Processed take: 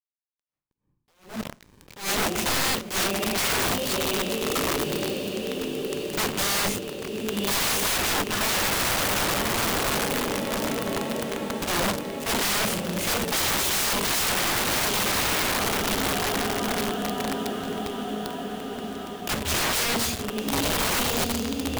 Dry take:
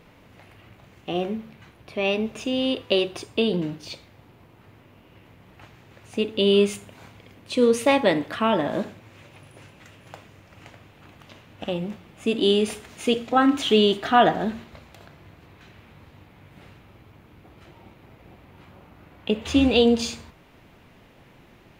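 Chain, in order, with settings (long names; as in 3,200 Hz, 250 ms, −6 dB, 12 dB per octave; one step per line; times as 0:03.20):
0:03.18–0:03.66: three sine waves on the formant tracks
low-shelf EQ 190 Hz +9 dB
in parallel at −2 dB: downward compressor 16 to 1, threshold −28 dBFS, peak gain reduction 18.5 dB
on the sum: bit reduction 5 bits
feedback delay with all-pass diffusion 1,210 ms, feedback 61%, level −5.5 dB
wrap-around overflow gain 19.5 dB
on a send at −23 dB: convolution reverb RT60 0.70 s, pre-delay 5 ms
on the sum: level that may rise only so fast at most 160 dB per second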